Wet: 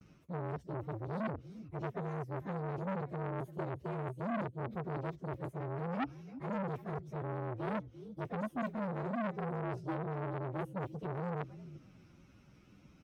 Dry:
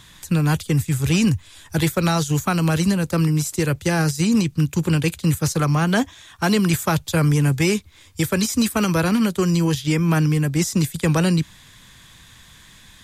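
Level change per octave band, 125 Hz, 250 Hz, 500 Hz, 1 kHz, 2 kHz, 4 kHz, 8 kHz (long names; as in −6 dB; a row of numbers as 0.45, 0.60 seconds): −21.0 dB, −21.0 dB, −14.0 dB, −13.0 dB, −21.0 dB, −33.5 dB, below −40 dB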